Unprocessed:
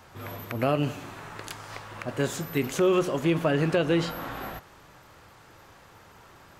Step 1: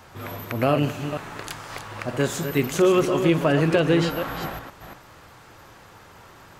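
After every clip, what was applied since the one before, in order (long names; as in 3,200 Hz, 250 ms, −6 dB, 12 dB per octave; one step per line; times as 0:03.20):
delay that plays each chunk backwards 235 ms, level −8 dB
level +4 dB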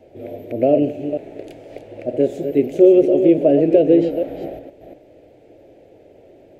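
drawn EQ curve 190 Hz 0 dB, 290 Hz +13 dB, 640 Hz +14 dB, 1,100 Hz −26 dB, 2,300 Hz −3 dB, 5,200 Hz −13 dB
level −5.5 dB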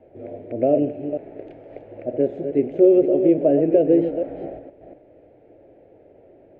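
Chebyshev low-pass filter 1,600 Hz, order 2
level −2.5 dB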